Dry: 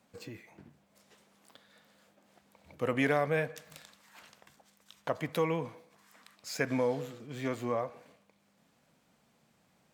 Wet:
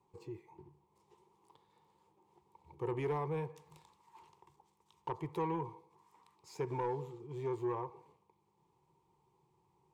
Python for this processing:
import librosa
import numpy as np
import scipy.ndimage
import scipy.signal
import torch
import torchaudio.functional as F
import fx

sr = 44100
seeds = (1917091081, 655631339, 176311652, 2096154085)

y = fx.curve_eq(x, sr, hz=(150.0, 250.0, 370.0, 630.0, 920.0, 1500.0, 2200.0, 4700.0, 9000.0, 14000.0), db=(0, -19, 9, -21, 9, -23, -13, -15, -13, -19))
y = 10.0 ** (-27.0 / 20.0) * np.tanh(y / 10.0 ** (-27.0 / 20.0))
y = y * librosa.db_to_amplitude(-1.0)